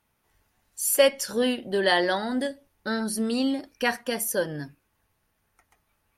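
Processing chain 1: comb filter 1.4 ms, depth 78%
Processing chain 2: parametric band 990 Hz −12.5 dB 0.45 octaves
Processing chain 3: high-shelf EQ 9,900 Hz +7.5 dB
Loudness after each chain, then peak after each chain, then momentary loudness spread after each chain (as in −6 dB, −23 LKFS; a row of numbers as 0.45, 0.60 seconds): −24.0, −26.0, −24.5 LKFS; −3.5, −7.0, −5.5 dBFS; 14, 12, 14 LU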